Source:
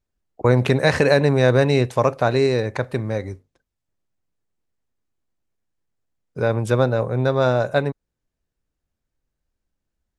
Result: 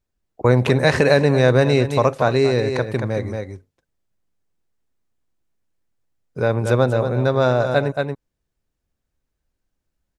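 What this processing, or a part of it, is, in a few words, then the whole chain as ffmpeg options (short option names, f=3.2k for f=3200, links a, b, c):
ducked delay: -filter_complex "[0:a]asplit=3[a][b][c];[b]adelay=229,volume=-4dB[d];[c]apad=whole_len=459282[e];[d][e]sidechaincompress=threshold=-23dB:ratio=8:attack=16:release=173[f];[a][f]amix=inputs=2:normalize=0,volume=1dB"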